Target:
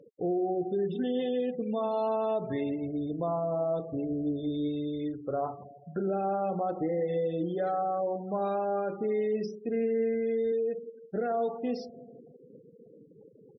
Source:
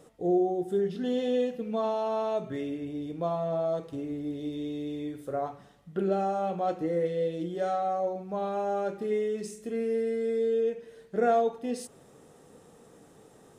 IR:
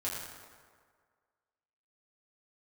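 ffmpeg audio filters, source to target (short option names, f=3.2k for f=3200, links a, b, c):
-filter_complex "[0:a]asettb=1/sr,asplit=3[a][b][c];[a]atrim=end=9.874[d];[b]atrim=start=9.87:end=10.52,asetpts=PTS-STARTPTS,afade=t=in:d=0.004:c=qsin,afade=t=out:st=0.646:d=0.004:c=qsin,asubboost=boost=11.5:cutoff=150[e];[c]atrim=start=10.516[f];[d][e]acrossfade=d=0.004:c1=hsin:c2=qsin[g];[g][f]acrossfade=d=0.004:c1=qsin:c2=hsin,alimiter=level_in=1.5dB:limit=-24dB:level=0:latency=1:release=57,volume=-1.5dB,aecho=1:1:164|328|492|656|820|984:0.15|0.0898|0.0539|0.0323|0.0194|0.0116,afftfilt=real='re*gte(hypot(re,im),0.00708)':imag='im*gte(hypot(re,im),0.00708)':win_size=1024:overlap=0.75,volume=3dB" -ar 24000 -c:a libmp3lame -b:a 24k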